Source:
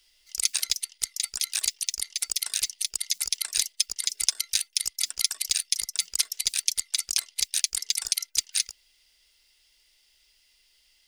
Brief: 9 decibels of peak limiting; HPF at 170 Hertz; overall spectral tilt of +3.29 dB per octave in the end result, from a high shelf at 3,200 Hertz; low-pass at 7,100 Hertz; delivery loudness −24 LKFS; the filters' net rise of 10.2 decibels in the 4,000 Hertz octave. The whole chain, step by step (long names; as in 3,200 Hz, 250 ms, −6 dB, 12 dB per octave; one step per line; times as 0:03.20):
high-pass filter 170 Hz
low-pass filter 7,100 Hz
high-shelf EQ 3,200 Hz +6 dB
parametric band 4,000 Hz +8.5 dB
level −2.5 dB
brickwall limiter −6 dBFS